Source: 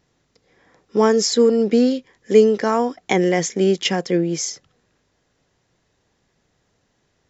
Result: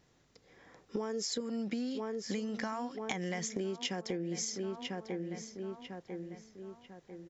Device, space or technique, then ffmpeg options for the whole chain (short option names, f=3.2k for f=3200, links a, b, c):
serial compression, peaks first: -filter_complex "[0:a]asettb=1/sr,asplit=3[a][b][c];[a]atrim=end=1.404[d];[b]atrim=start=1.4:end=3.56,asetpts=PTS-STARTPTS,afade=t=in:d=0.004:c=qsin,afade=t=out:st=2.156:d=0.004:c=qsin,equalizer=f=420:t=o:w=0.71:g=-14.5[e];[c]atrim=start=3.556[f];[d][e]acrossfade=d=0.004:c1=hsin:c2=qsin[g];[g][f]acrossfade=d=0.004:c1=qsin:c2=hsin,asplit=2[h][i];[i]adelay=996,lowpass=f=2.8k:p=1,volume=-14dB,asplit=2[j][k];[k]adelay=996,lowpass=f=2.8k:p=1,volume=0.45,asplit=2[l][m];[m]adelay=996,lowpass=f=2.8k:p=1,volume=0.45,asplit=2[n][o];[o]adelay=996,lowpass=f=2.8k:p=1,volume=0.45[p];[h][j][l][n][p]amix=inputs=5:normalize=0,acompressor=threshold=-25dB:ratio=6,acompressor=threshold=-33dB:ratio=2.5,volume=-2.5dB"